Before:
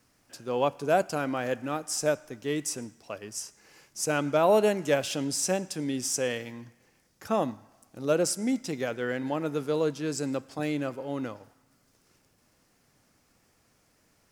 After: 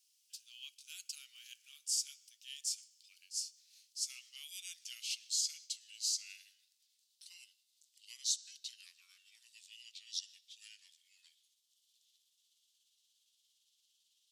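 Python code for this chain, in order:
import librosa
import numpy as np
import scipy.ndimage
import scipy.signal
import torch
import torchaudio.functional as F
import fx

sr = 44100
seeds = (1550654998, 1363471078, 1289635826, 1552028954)

y = fx.pitch_glide(x, sr, semitones=-8.0, runs='starting unshifted')
y = scipy.signal.sosfilt(scipy.signal.cheby1(4, 1.0, 3000.0, 'highpass', fs=sr, output='sos'), y)
y = y * 10.0 ** (-2.0 / 20.0)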